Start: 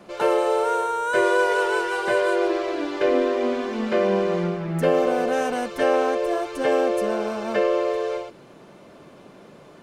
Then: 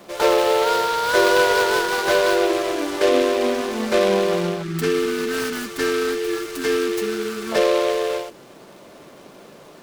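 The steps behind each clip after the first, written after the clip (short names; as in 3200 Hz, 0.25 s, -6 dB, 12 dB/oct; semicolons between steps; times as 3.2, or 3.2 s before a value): tone controls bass -5 dB, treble +7 dB; spectral delete 4.63–7.52, 460–1100 Hz; noise-modulated delay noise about 2500 Hz, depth 0.054 ms; gain +3.5 dB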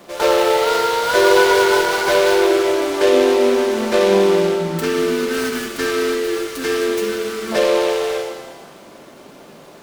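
shimmer reverb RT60 1.3 s, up +7 st, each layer -8 dB, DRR 4.5 dB; gain +1 dB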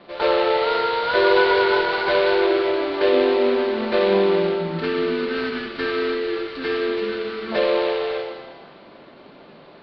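elliptic low-pass 4400 Hz, stop band 40 dB; gain -3 dB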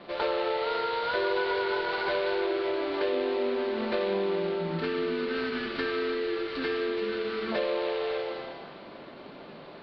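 compressor 3:1, threshold -29 dBFS, peak gain reduction 12.5 dB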